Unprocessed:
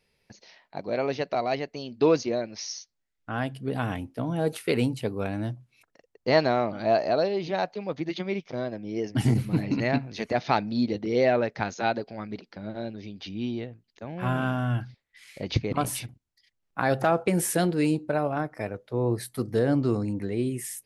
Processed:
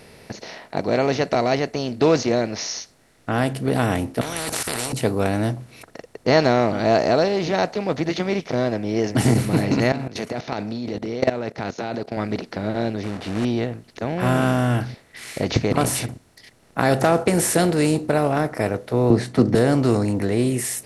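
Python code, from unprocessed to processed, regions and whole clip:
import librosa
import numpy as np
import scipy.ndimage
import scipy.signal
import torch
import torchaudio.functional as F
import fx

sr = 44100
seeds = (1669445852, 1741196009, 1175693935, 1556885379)

y = fx.chain(x, sr, fx.level_steps(step_db=16),
    fx.spectral_comp(ratio=10.0), at=(4.21, 4.93))
y = fx.chain(y, sr, fx.highpass(hz=97.0, slope=12),
    fx.peak_eq(hz=1800.0, db=-3.5, octaves=0.29),
    fx.level_steps(step_db=20), at=(9.92, 12.17))
y = fx.chain(y, sr, fx.quant_companded(bits=4),
    fx.spacing_loss(db_at_10k=23), at=(13.03, 13.45))
y = fx.chain(y, sr, fx.bessel_lowpass(hz=3900.0, order=4),
    fx.peak_eq(hz=230.0, db=11.5, octaves=1.7),
    fx.band_squash(depth_pct=40), at=(19.1, 19.55))
y = fx.bin_compress(y, sr, power=0.6)
y = fx.dynamic_eq(y, sr, hz=7500.0, q=1.4, threshold_db=-47.0, ratio=4.0, max_db=5)
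y = y * librosa.db_to_amplitude(2.0)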